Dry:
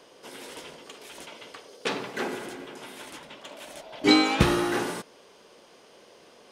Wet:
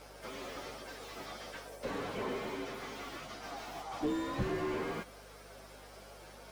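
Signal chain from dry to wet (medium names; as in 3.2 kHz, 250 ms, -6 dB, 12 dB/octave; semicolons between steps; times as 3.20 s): frequency axis rescaled in octaves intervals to 121%; peaking EQ 1.8 kHz +4.5 dB 2.9 oct; compression, threshold -32 dBFS, peak gain reduction 16.5 dB; hum 50 Hz, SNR 21 dB; slew-rate limiter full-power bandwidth 11 Hz; trim +2.5 dB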